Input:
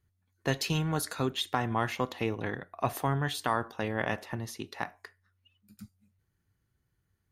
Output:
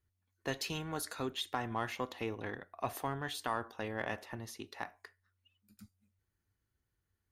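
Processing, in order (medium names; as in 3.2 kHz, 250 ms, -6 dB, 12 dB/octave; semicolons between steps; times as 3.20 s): in parallel at -10 dB: saturation -30 dBFS, distortion -7 dB; on the sum: peaking EQ 150 Hz -8 dB 0.72 oct; trim -7.5 dB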